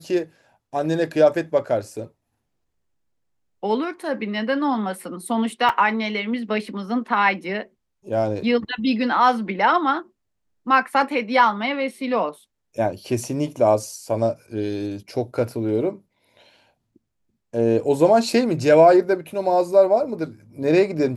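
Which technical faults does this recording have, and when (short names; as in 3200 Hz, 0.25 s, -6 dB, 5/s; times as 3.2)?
5.69 gap 4 ms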